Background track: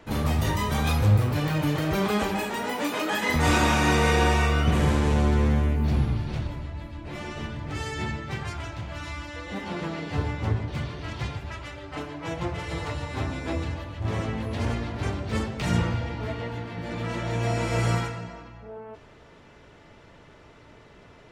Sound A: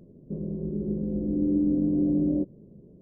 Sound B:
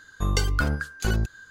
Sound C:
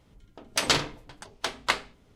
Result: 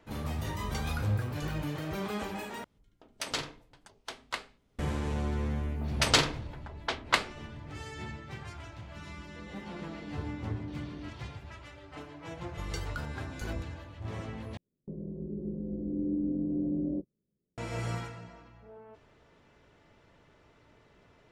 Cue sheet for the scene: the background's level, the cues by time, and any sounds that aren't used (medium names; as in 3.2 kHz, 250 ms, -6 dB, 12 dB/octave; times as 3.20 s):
background track -10.5 dB
0.38 s: add B -16 dB
2.64 s: replace with C -11 dB
5.44 s: add C -0.5 dB + level-controlled noise filter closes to 970 Hz, open at -23.5 dBFS
8.66 s: add A -17 dB + Gaussian low-pass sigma 19 samples
12.37 s: add B -14.5 dB
14.57 s: replace with A -7.5 dB + gate -38 dBFS, range -26 dB